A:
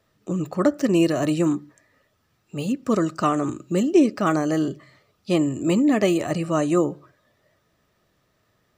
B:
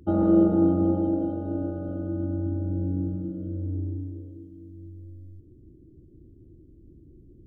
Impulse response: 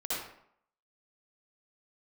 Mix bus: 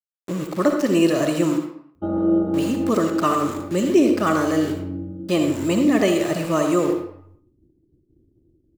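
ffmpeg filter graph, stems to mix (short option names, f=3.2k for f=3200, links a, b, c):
-filter_complex "[0:a]aeval=exprs='val(0)*gte(abs(val(0)),0.0224)':c=same,volume=0dB,asplit=3[a][b][c];[b]volume=-7dB[d];[1:a]adelay=1950,volume=0dB,asplit=2[e][f];[f]volume=-18.5dB[g];[c]apad=whole_len=415181[h];[e][h]sidechaincompress=threshold=-25dB:ratio=8:attack=16:release=263[i];[2:a]atrim=start_sample=2205[j];[d][g]amix=inputs=2:normalize=0[k];[k][j]afir=irnorm=-1:irlink=0[l];[a][i][l]amix=inputs=3:normalize=0,bandreject=f=740:w=12,agate=range=-33dB:threshold=-44dB:ratio=3:detection=peak,lowshelf=f=190:g=-7"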